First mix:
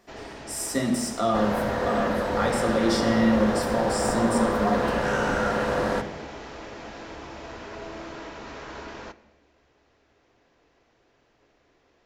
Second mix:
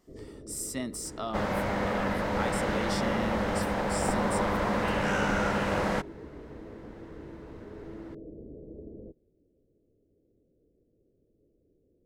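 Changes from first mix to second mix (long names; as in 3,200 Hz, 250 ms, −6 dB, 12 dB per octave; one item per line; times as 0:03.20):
first sound: add Butterworth low-pass 510 Hz 48 dB per octave
reverb: off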